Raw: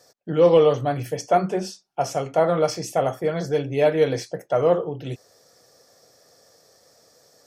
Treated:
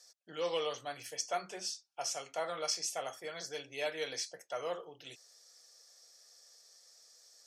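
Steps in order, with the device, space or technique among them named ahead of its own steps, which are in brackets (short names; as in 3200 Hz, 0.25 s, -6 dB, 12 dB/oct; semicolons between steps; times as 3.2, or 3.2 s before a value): piezo pickup straight into a mixer (LPF 6800 Hz 12 dB/oct; differentiator); gain +2.5 dB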